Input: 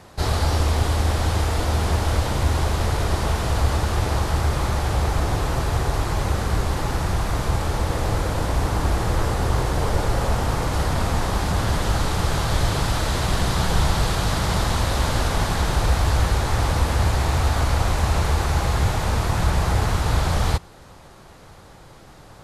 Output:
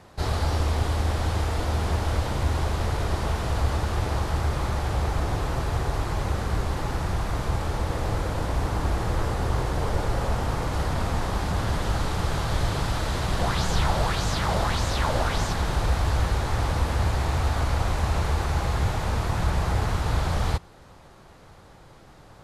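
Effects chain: high shelf 5100 Hz -5 dB; 13.39–15.53 LFO bell 1.7 Hz 550–7100 Hz +9 dB; gain -4 dB

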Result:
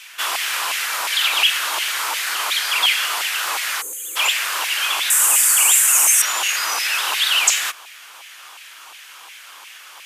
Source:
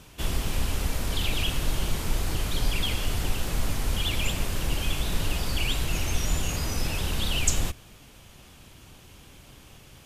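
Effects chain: 3.81–4.16 spectral gain 540–6200 Hz -27 dB; 5.1–6.22 resonant high shelf 5900 Hz +12 dB, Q 3; in parallel at -2.5 dB: limiter -16 dBFS, peak gain reduction 8 dB; on the sum: LFO high-pass saw down 2.8 Hz 920–2200 Hz; brick-wall FIR high-pass 260 Hz; gain +7 dB

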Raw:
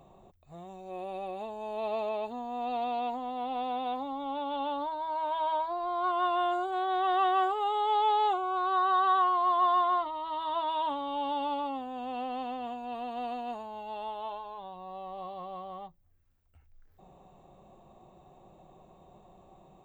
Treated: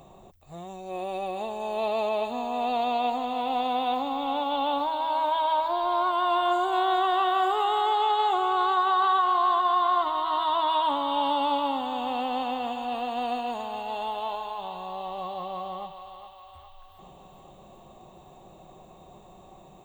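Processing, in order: limiter -24.5 dBFS, peak gain reduction 6 dB; high shelf 3100 Hz +7.5 dB; on a send: thinning echo 0.414 s, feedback 69%, high-pass 680 Hz, level -7.5 dB; on the sum: gain +5.5 dB

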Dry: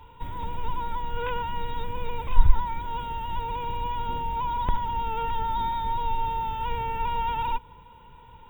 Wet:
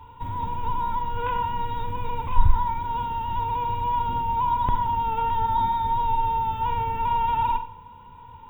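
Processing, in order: fifteen-band EQ 100 Hz +10 dB, 250 Hz +6 dB, 1000 Hz +8 dB; Schroeder reverb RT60 0.5 s, combs from 31 ms, DRR 8 dB; gain -2.5 dB

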